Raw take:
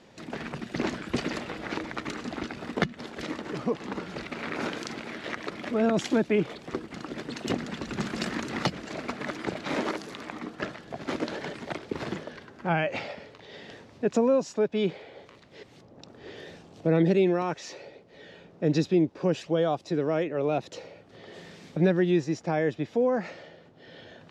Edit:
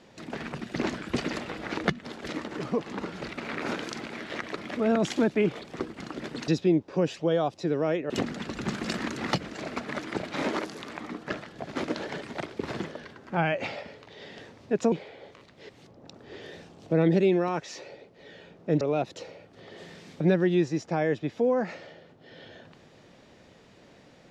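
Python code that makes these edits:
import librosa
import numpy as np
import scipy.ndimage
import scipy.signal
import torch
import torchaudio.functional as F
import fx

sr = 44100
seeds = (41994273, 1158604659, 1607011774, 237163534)

y = fx.edit(x, sr, fx.cut(start_s=1.85, length_s=0.94),
    fx.cut(start_s=14.24, length_s=0.62),
    fx.move(start_s=18.75, length_s=1.62, to_s=7.42), tone=tone)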